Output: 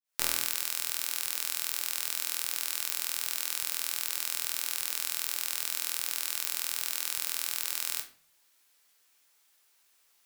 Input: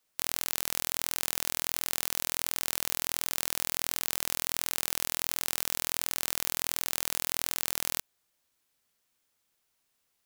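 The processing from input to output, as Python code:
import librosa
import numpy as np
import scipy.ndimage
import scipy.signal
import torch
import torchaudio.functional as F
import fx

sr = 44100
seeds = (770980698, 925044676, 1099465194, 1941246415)

y = fx.fade_in_head(x, sr, length_s=0.69)
y = fx.highpass(y, sr, hz=1000.0, slope=6)
y = fx.over_compress(y, sr, threshold_db=-44.0, ratio=-1.0)
y = fx.leveller(y, sr, passes=2)
y = fx.room_shoebox(y, sr, seeds[0], volume_m3=41.0, walls='mixed', distance_m=0.41)
y = y * 10.0 ** (3.0 / 20.0)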